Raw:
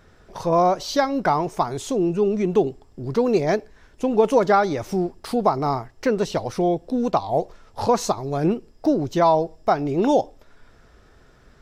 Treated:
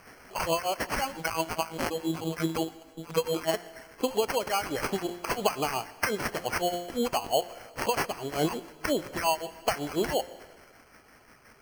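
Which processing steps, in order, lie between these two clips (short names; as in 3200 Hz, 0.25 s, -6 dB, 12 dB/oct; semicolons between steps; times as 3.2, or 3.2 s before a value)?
bin magnitudes rounded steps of 15 dB; tilt +4.5 dB/oct; compressor 4:1, threshold -26 dBFS, peak gain reduction 11 dB; harmonic tremolo 5.7 Hz, depth 100%, crossover 1500 Hz; de-hum 175.1 Hz, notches 23; 1.13–3.54 robotiser 162 Hz; vocal rider within 5 dB 0.5 s; sample-and-hold 12×; plate-style reverb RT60 1.5 s, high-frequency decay 1×, pre-delay 0.105 s, DRR 18.5 dB; gain +5.5 dB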